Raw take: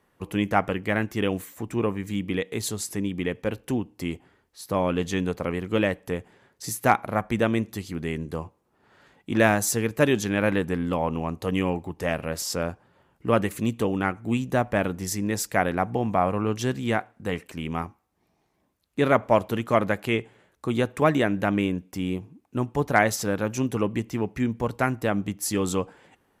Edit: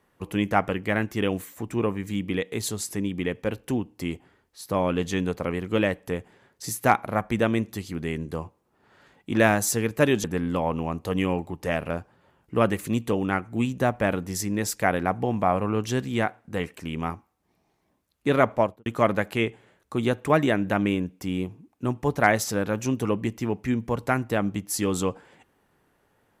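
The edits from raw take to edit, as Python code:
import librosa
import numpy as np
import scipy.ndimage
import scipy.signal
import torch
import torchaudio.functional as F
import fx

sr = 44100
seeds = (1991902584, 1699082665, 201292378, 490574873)

y = fx.studio_fade_out(x, sr, start_s=19.23, length_s=0.35)
y = fx.edit(y, sr, fx.cut(start_s=10.24, length_s=0.37),
    fx.cut(start_s=12.27, length_s=0.35), tone=tone)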